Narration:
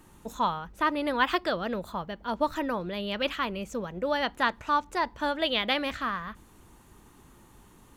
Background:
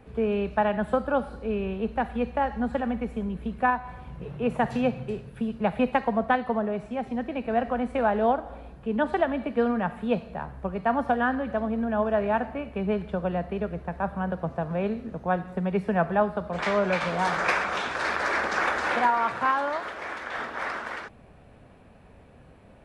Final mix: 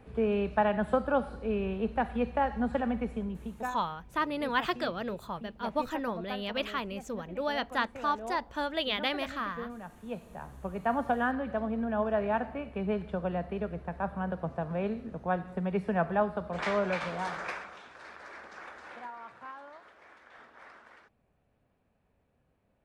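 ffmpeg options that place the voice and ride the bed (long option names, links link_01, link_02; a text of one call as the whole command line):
ffmpeg -i stem1.wav -i stem2.wav -filter_complex "[0:a]adelay=3350,volume=-4dB[link_01];[1:a]volume=10dB,afade=type=out:start_time=3.06:duration=0.72:silence=0.188365,afade=type=in:start_time=9.96:duration=0.94:silence=0.237137,afade=type=out:start_time=16.74:duration=1.03:silence=0.149624[link_02];[link_01][link_02]amix=inputs=2:normalize=0" out.wav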